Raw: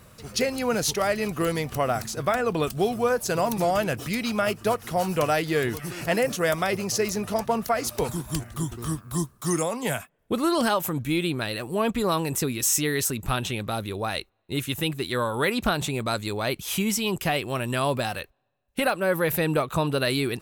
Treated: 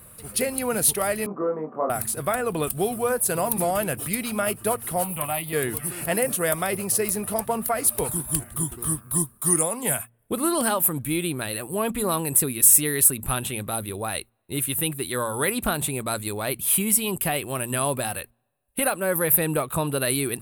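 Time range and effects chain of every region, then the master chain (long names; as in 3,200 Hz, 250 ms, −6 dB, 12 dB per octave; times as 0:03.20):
0:01.26–0:01.90: elliptic band-pass filter 210–1,200 Hz, stop band 60 dB + double-tracking delay 26 ms −3 dB
0:05.04–0:05.53: high-shelf EQ 12,000 Hz +6.5 dB + phaser with its sweep stopped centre 1,600 Hz, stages 6 + saturating transformer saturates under 530 Hz
whole clip: high shelf with overshoot 7,800 Hz +9.5 dB, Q 3; hum removal 116.9 Hz, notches 2; level −1 dB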